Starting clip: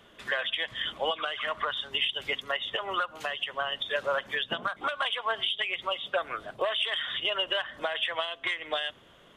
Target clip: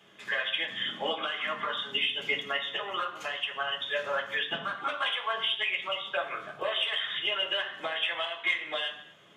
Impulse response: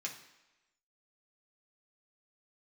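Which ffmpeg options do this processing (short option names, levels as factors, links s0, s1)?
-filter_complex "[0:a]asettb=1/sr,asplit=3[s0][s1][s2];[s0]atrim=end=0.524[s3];[s1]atrim=start=0.52:end=2.6,asetpts=PTS-STARTPTS,afade=t=in:d=0.004:c=qsin,afade=t=out:st=2.076:d=0.004:c=qsin,equalizer=f=240:w=1.5:g=10.5[s4];[s2]atrim=start=2.596[s5];[s3][s4]acrossfade=d=0.004:c1=hsin:c2=qsin[s6];[s6][s5]acrossfade=d=0.004:c1=qsin:c2=hsin[s7];[1:a]atrim=start_sample=2205,afade=t=out:st=0.31:d=0.01,atrim=end_sample=14112[s8];[s7][s8]afir=irnorm=-1:irlink=0"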